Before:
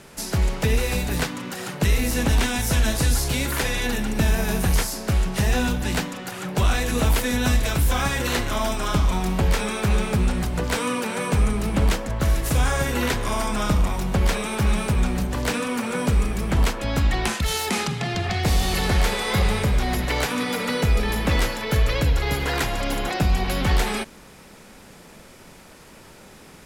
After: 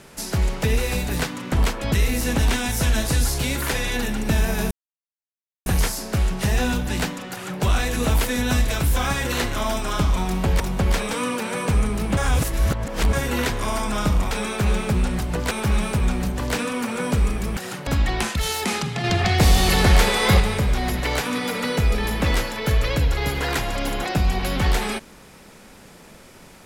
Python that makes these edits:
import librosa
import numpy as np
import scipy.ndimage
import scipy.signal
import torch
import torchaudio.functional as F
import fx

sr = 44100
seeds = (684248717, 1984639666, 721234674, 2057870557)

y = fx.edit(x, sr, fx.swap(start_s=1.52, length_s=0.3, other_s=16.52, other_length_s=0.4),
    fx.insert_silence(at_s=4.61, length_s=0.95),
    fx.swap(start_s=9.55, length_s=1.2, other_s=13.95, other_length_s=0.51),
    fx.reverse_span(start_s=11.81, length_s=0.96),
    fx.clip_gain(start_s=18.09, length_s=1.36, db=5.0), tone=tone)